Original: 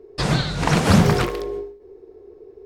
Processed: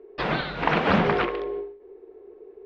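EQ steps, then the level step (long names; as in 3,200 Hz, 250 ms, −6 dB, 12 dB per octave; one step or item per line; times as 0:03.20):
low-pass filter 3,100 Hz 24 dB per octave
parametric band 110 Hz −11 dB 0.91 octaves
low-shelf EQ 180 Hz −11 dB
0.0 dB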